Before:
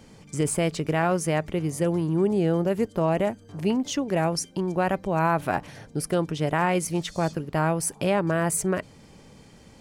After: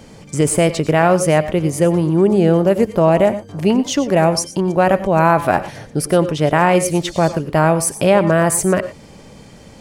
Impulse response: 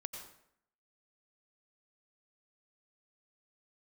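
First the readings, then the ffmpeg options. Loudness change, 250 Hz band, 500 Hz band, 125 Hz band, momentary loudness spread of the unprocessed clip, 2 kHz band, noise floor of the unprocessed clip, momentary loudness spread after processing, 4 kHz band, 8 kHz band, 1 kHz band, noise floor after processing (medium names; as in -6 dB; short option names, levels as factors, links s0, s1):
+10.0 dB, +9.0 dB, +11.0 dB, +9.0 dB, 5 LU, +9.0 dB, -51 dBFS, 6 LU, +9.0 dB, +9.0 dB, +10.0 dB, -41 dBFS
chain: -filter_complex "[0:a]equalizer=f=600:t=o:w=0.57:g=3.5,asplit=2[s0][s1];[1:a]atrim=start_sample=2205,afade=t=out:st=0.17:d=0.01,atrim=end_sample=7938[s2];[s1][s2]afir=irnorm=-1:irlink=0,volume=1.26[s3];[s0][s3]amix=inputs=2:normalize=0,volume=1.5"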